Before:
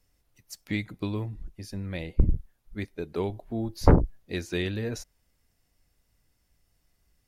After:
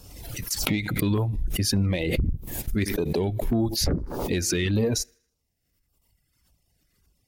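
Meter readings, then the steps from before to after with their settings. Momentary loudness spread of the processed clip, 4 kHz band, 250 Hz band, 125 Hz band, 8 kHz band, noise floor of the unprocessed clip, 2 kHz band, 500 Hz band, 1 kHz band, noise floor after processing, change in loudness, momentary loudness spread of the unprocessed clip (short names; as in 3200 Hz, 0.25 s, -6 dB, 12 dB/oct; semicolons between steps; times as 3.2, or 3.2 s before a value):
6 LU, +11.5 dB, +4.5 dB, +3.0 dB, +17.5 dB, -72 dBFS, +5.5 dB, +3.5 dB, -2.0 dB, -76 dBFS, +3.5 dB, 17 LU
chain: dynamic EQ 110 Hz, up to -4 dB, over -36 dBFS, Q 2.4; gate -55 dBFS, range -11 dB; HPF 80 Hz 6 dB/oct; on a send: thinning echo 79 ms, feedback 46%, high-pass 260 Hz, level -23.5 dB; on the sum: compressor 10:1, threshold -31 dBFS, peak gain reduction 17 dB; reverb removal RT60 1.5 s; low shelf 150 Hz +6 dB; in parallel at -4 dB: soft clip -33 dBFS, distortion -8 dB; on the sum: LFO notch saw down 1.7 Hz 590–2100 Hz; maximiser +27 dB; backwards sustainer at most 44 dB/s; gain -15.5 dB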